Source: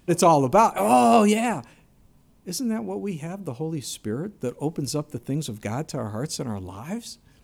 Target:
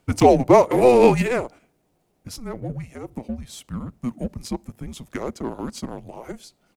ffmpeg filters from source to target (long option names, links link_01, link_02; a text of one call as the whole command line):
ffmpeg -i in.wav -filter_complex "[0:a]highpass=frequency=400:width=0.5412,highpass=frequency=400:width=1.3066,highshelf=frequency=3900:gain=-4,atempo=1.1,asplit=2[link_01][link_02];[link_02]adynamicsmooth=sensitivity=4.5:basefreq=1300,volume=2.5dB[link_03];[link_01][link_03]amix=inputs=2:normalize=0,afreqshift=-250,volume=-2.5dB" out.wav